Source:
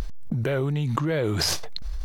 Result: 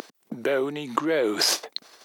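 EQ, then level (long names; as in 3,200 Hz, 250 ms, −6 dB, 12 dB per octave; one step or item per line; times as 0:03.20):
high-pass filter 270 Hz 24 dB per octave
+3.0 dB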